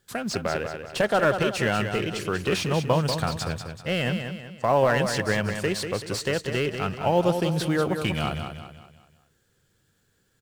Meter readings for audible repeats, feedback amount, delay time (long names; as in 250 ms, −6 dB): 4, 42%, 190 ms